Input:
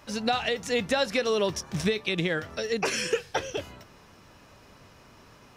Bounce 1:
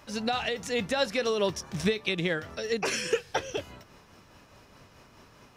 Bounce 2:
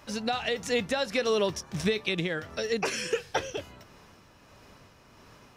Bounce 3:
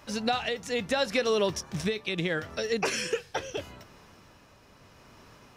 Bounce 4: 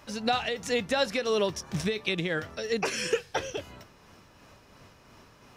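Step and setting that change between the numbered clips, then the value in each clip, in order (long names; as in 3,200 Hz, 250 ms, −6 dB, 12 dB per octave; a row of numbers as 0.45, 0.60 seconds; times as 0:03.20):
amplitude tremolo, speed: 4.8, 1.5, 0.76, 2.9 Hertz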